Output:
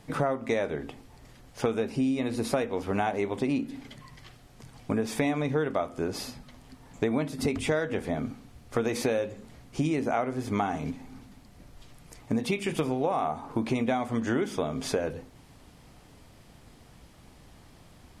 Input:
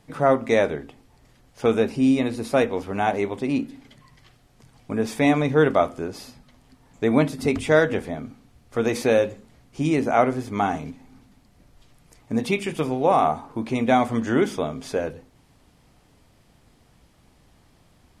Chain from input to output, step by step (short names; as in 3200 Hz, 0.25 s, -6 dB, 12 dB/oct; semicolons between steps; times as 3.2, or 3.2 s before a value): compressor 10:1, threshold -28 dBFS, peak gain reduction 16 dB; gain +4 dB